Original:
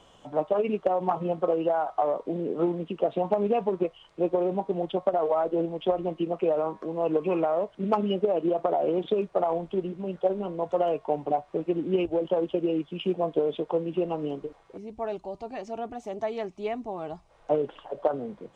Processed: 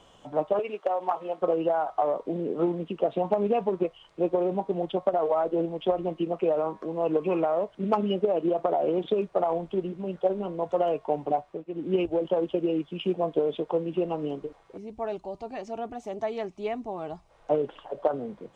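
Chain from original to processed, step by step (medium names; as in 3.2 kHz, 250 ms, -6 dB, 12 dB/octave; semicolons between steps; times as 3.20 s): 0.59–1.42 s: high-pass 520 Hz 12 dB/octave; 11.39–11.92 s: dip -14 dB, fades 0.26 s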